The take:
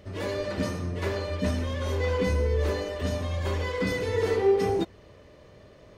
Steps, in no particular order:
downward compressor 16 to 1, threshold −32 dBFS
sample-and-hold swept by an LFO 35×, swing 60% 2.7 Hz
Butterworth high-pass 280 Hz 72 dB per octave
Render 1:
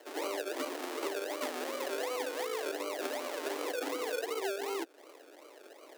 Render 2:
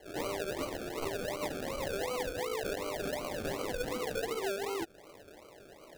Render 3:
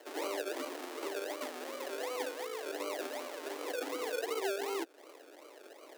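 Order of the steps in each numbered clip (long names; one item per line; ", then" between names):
sample-and-hold swept by an LFO, then Butterworth high-pass, then downward compressor
Butterworth high-pass, then sample-and-hold swept by an LFO, then downward compressor
sample-and-hold swept by an LFO, then downward compressor, then Butterworth high-pass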